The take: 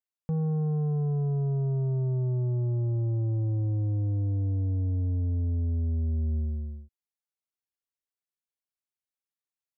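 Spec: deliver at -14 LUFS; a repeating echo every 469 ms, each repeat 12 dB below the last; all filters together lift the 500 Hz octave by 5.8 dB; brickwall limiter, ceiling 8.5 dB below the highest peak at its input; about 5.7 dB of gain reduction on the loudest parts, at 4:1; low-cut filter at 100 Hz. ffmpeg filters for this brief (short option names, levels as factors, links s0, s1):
-af "highpass=100,equalizer=f=500:t=o:g=7.5,acompressor=threshold=0.0316:ratio=4,alimiter=level_in=1.88:limit=0.0631:level=0:latency=1,volume=0.531,aecho=1:1:469|938|1407:0.251|0.0628|0.0157,volume=14.1"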